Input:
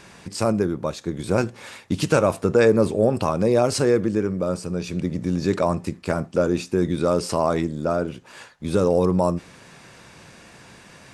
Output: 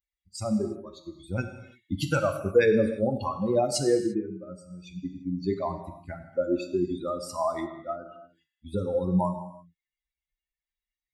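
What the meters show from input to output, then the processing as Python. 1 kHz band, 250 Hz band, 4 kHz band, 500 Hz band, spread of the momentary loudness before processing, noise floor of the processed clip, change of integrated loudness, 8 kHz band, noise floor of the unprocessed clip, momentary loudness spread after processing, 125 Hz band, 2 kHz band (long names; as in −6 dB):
−6.0 dB, −6.5 dB, −6.0 dB, −6.5 dB, 9 LU, below −85 dBFS, −6.0 dB, −5.5 dB, −48 dBFS, 18 LU, −8.0 dB, −5.5 dB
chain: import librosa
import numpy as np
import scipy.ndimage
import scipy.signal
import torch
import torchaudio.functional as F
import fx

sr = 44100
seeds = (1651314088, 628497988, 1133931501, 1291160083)

y = fx.bin_expand(x, sr, power=3.0)
y = fx.rev_gated(y, sr, seeds[0], gate_ms=370, shape='falling', drr_db=5.5)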